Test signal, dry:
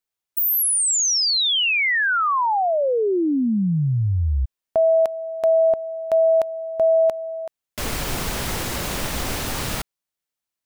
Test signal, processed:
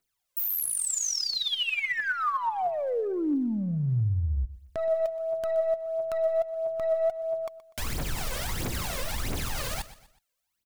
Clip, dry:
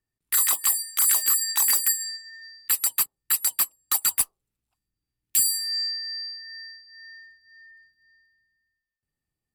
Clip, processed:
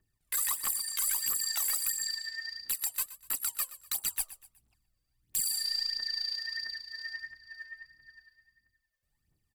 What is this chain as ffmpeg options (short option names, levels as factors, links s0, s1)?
-af "aeval=exprs='0.299*(cos(1*acos(clip(val(0)/0.299,-1,1)))-cos(1*PI/2))+0.0133*(cos(2*acos(clip(val(0)/0.299,-1,1)))-cos(2*PI/2))+0.0168*(cos(3*acos(clip(val(0)/0.299,-1,1)))-cos(3*PI/2))+0.00188*(cos(8*acos(clip(val(0)/0.299,-1,1)))-cos(8*PI/2))':c=same,aphaser=in_gain=1:out_gain=1:delay=2:decay=0.71:speed=1.5:type=triangular,acompressor=threshold=0.02:ratio=3:attack=0.39:release=149:detection=peak,aecho=1:1:123|246|369:0.158|0.0602|0.0229,volume=1.58"